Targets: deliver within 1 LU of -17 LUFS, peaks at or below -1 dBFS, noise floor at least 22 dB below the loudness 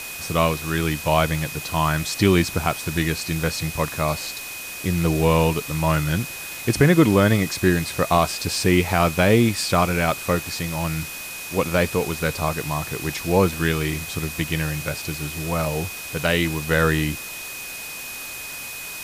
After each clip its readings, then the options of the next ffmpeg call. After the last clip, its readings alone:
steady tone 2500 Hz; tone level -35 dBFS; noise floor -34 dBFS; noise floor target -44 dBFS; loudness -22.0 LUFS; peak -4.0 dBFS; loudness target -17.0 LUFS
-> -af "bandreject=f=2.5k:w=30"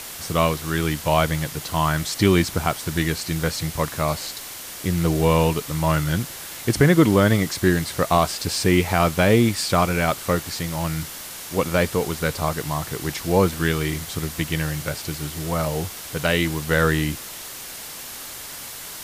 steady tone none; noise floor -36 dBFS; noise floor target -44 dBFS
-> -af "afftdn=nr=8:nf=-36"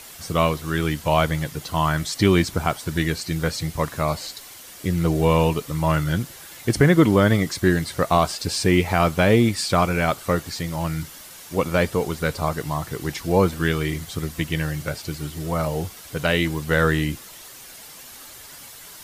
noise floor -42 dBFS; noise floor target -44 dBFS
-> -af "afftdn=nr=6:nf=-42"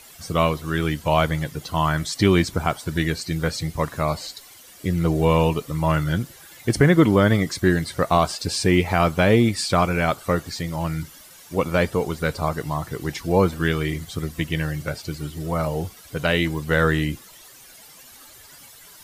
noise floor -47 dBFS; loudness -22.5 LUFS; peak -4.5 dBFS; loudness target -17.0 LUFS
-> -af "volume=5.5dB,alimiter=limit=-1dB:level=0:latency=1"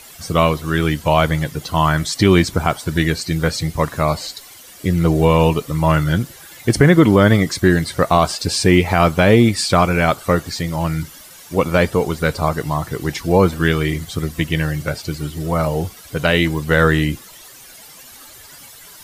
loudness -17.0 LUFS; peak -1.0 dBFS; noise floor -41 dBFS

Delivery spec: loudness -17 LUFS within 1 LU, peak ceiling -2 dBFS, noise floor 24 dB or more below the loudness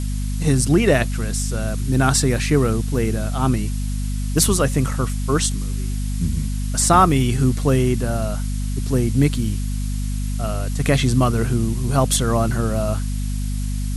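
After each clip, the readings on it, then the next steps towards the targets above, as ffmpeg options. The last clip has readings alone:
hum 50 Hz; harmonics up to 250 Hz; hum level -21 dBFS; noise floor -23 dBFS; noise floor target -45 dBFS; loudness -20.5 LUFS; peak -2.0 dBFS; loudness target -17.0 LUFS
-> -af "bandreject=f=50:t=h:w=6,bandreject=f=100:t=h:w=6,bandreject=f=150:t=h:w=6,bandreject=f=200:t=h:w=6,bandreject=f=250:t=h:w=6"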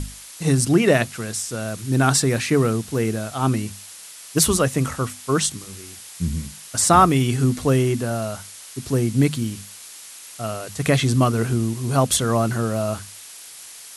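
hum none; noise floor -41 dBFS; noise floor target -45 dBFS
-> -af "afftdn=nr=6:nf=-41"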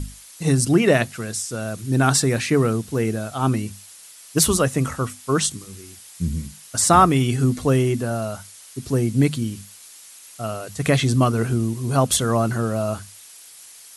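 noise floor -45 dBFS; loudness -21.0 LUFS; peak -3.0 dBFS; loudness target -17.0 LUFS
-> -af "volume=4dB,alimiter=limit=-2dB:level=0:latency=1"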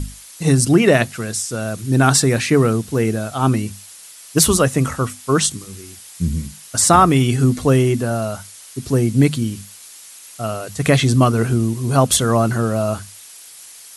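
loudness -17.0 LUFS; peak -2.0 dBFS; noise floor -41 dBFS

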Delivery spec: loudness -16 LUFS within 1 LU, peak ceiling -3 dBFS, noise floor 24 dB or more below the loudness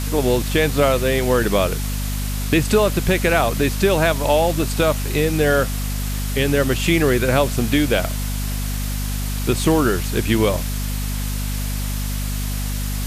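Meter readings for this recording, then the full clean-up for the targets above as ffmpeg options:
hum 50 Hz; harmonics up to 250 Hz; hum level -21 dBFS; noise floor -24 dBFS; noise floor target -44 dBFS; loudness -20.0 LUFS; peak -2.5 dBFS; loudness target -16.0 LUFS
-> -af "bandreject=f=50:t=h:w=6,bandreject=f=100:t=h:w=6,bandreject=f=150:t=h:w=6,bandreject=f=200:t=h:w=6,bandreject=f=250:t=h:w=6"
-af "afftdn=nr=20:nf=-24"
-af "volume=4dB,alimiter=limit=-3dB:level=0:latency=1"

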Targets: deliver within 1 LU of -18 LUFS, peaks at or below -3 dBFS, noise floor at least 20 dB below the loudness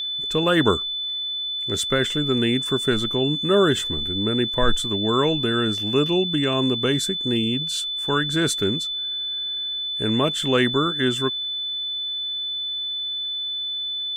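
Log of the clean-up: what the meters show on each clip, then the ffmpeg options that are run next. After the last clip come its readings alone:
steady tone 3500 Hz; tone level -25 dBFS; loudness -22.0 LUFS; peak -5.0 dBFS; loudness target -18.0 LUFS
-> -af "bandreject=f=3.5k:w=30"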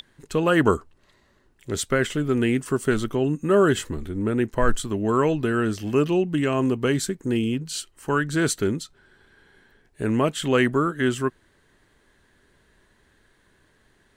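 steady tone none; loudness -23.5 LUFS; peak -6.0 dBFS; loudness target -18.0 LUFS
-> -af "volume=5.5dB,alimiter=limit=-3dB:level=0:latency=1"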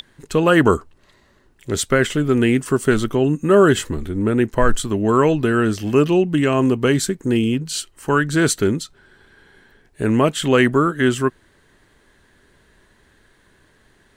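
loudness -18.0 LUFS; peak -3.0 dBFS; noise floor -57 dBFS

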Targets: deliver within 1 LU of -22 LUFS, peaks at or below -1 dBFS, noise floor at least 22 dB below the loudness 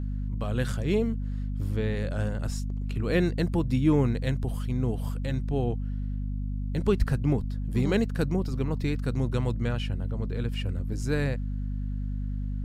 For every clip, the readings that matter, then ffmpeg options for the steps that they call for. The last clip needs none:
hum 50 Hz; harmonics up to 250 Hz; hum level -28 dBFS; loudness -29.0 LUFS; peak -9.5 dBFS; loudness target -22.0 LUFS
-> -af "bandreject=f=50:t=h:w=4,bandreject=f=100:t=h:w=4,bandreject=f=150:t=h:w=4,bandreject=f=200:t=h:w=4,bandreject=f=250:t=h:w=4"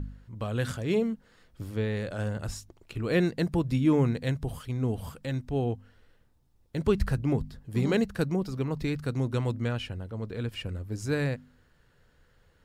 hum none; loudness -30.0 LUFS; peak -10.5 dBFS; loudness target -22.0 LUFS
-> -af "volume=8dB"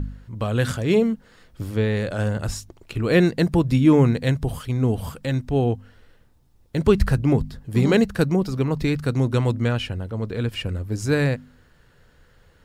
loudness -22.0 LUFS; peak -2.5 dBFS; noise floor -57 dBFS

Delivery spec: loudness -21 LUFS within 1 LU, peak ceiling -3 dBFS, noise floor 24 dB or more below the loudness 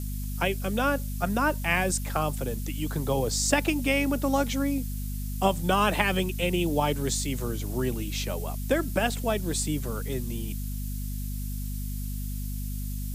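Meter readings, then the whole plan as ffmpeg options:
hum 50 Hz; harmonics up to 250 Hz; hum level -30 dBFS; noise floor -32 dBFS; noise floor target -52 dBFS; loudness -28.0 LUFS; peak -7.0 dBFS; loudness target -21.0 LUFS
-> -af "bandreject=f=50:t=h:w=6,bandreject=f=100:t=h:w=6,bandreject=f=150:t=h:w=6,bandreject=f=200:t=h:w=6,bandreject=f=250:t=h:w=6"
-af "afftdn=nr=20:nf=-32"
-af "volume=7dB,alimiter=limit=-3dB:level=0:latency=1"

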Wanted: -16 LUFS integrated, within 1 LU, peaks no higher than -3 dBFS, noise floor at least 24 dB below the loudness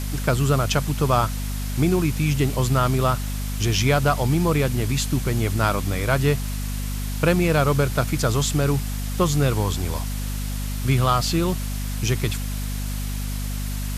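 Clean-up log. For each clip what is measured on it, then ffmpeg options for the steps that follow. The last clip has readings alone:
hum 50 Hz; harmonics up to 250 Hz; hum level -25 dBFS; noise floor -27 dBFS; noise floor target -47 dBFS; loudness -22.5 LUFS; peak -6.5 dBFS; loudness target -16.0 LUFS
-> -af "bandreject=f=50:t=h:w=4,bandreject=f=100:t=h:w=4,bandreject=f=150:t=h:w=4,bandreject=f=200:t=h:w=4,bandreject=f=250:t=h:w=4"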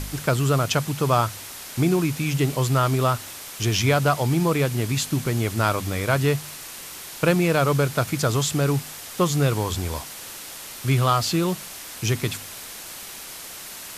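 hum none; noise floor -38 dBFS; noise floor target -47 dBFS
-> -af "afftdn=nr=9:nf=-38"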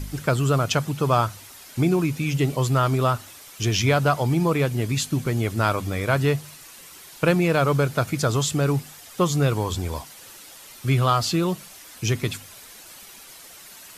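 noise floor -45 dBFS; noise floor target -47 dBFS
-> -af "afftdn=nr=6:nf=-45"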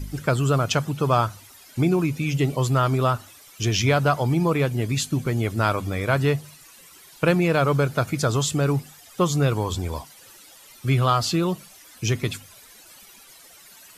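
noise floor -49 dBFS; loudness -23.0 LUFS; peak -6.0 dBFS; loudness target -16.0 LUFS
-> -af "volume=7dB,alimiter=limit=-3dB:level=0:latency=1"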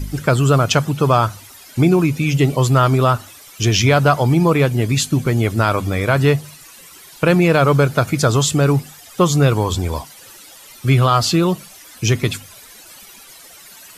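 loudness -16.5 LUFS; peak -3.0 dBFS; noise floor -42 dBFS

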